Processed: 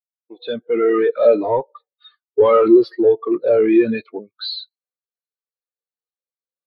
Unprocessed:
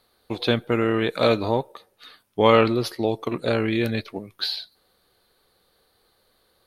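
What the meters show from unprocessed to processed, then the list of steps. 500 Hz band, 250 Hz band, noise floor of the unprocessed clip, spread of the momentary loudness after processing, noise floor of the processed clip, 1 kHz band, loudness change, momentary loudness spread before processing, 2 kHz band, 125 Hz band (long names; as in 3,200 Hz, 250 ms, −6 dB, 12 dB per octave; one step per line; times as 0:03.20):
+8.0 dB, +6.5 dB, −66 dBFS, 16 LU, below −85 dBFS, +1.0 dB, +6.5 dB, 14 LU, −3.5 dB, −11.5 dB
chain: fade in at the beginning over 0.97 s
mid-hump overdrive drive 34 dB, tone 4,200 Hz, clips at −1 dBFS
every bin expanded away from the loudest bin 2.5 to 1
level −1.5 dB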